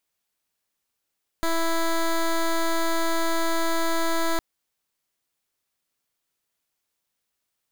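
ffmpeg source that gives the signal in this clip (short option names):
-f lavfi -i "aevalsrc='0.075*(2*lt(mod(330*t,1),0.12)-1)':d=2.96:s=44100"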